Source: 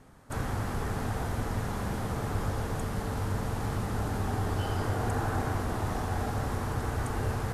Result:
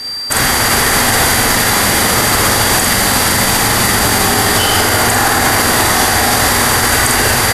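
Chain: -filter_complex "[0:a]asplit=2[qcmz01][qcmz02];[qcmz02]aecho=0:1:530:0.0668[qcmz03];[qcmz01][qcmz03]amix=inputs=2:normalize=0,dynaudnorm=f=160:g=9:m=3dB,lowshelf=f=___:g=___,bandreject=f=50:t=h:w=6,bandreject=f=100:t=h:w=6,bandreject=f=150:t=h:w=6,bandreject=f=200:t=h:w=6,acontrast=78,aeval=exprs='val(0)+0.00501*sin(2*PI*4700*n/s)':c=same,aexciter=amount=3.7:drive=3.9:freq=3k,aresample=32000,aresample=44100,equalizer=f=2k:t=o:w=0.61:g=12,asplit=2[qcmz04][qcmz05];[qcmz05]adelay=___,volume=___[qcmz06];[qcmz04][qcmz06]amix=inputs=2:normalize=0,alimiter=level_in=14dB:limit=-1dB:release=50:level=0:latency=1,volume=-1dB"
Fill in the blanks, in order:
220, -11.5, 46, -4dB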